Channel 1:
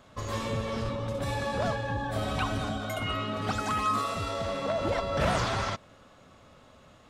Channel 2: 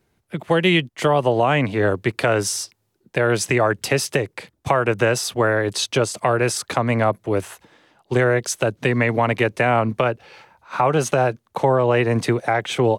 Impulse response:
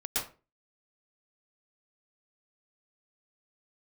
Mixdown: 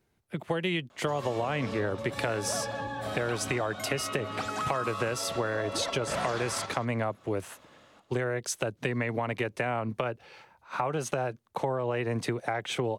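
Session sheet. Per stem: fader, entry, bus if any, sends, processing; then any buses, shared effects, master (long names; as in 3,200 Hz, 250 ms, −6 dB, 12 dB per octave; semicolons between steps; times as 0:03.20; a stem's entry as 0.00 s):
−2.0 dB, 0.90 s, no send, echo send −9.5 dB, high-pass filter 250 Hz 6 dB per octave
−6.5 dB, 0.00 s, no send, no echo send, no processing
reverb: not used
echo: single-tap delay 190 ms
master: downward compressor, threshold −26 dBFS, peak gain reduction 7.5 dB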